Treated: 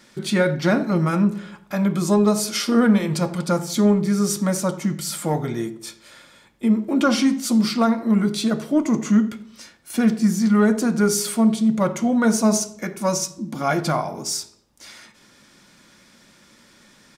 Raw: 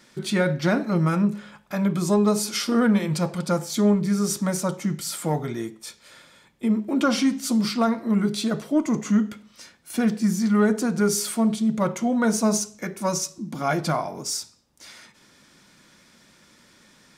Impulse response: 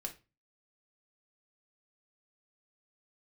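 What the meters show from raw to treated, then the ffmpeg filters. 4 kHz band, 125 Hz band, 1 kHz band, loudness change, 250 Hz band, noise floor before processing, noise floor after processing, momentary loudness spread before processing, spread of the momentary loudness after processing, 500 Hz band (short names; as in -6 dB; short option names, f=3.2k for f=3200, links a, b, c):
+2.5 dB, +2.0 dB, +2.5 dB, +3.0 dB, +3.5 dB, -56 dBFS, -54 dBFS, 9 LU, 9 LU, +2.5 dB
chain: -filter_complex "[0:a]asplit=2[a][b];[b]adelay=85,lowpass=f=1.1k:p=1,volume=-14.5dB,asplit=2[c][d];[d]adelay=85,lowpass=f=1.1k:p=1,volume=0.52,asplit=2[e][f];[f]adelay=85,lowpass=f=1.1k:p=1,volume=0.52,asplit=2[g][h];[h]adelay=85,lowpass=f=1.1k:p=1,volume=0.52,asplit=2[i][j];[j]adelay=85,lowpass=f=1.1k:p=1,volume=0.52[k];[a][c][e][g][i][k]amix=inputs=6:normalize=0,asplit=2[l][m];[1:a]atrim=start_sample=2205[n];[m][n]afir=irnorm=-1:irlink=0,volume=-7dB[o];[l][o]amix=inputs=2:normalize=0"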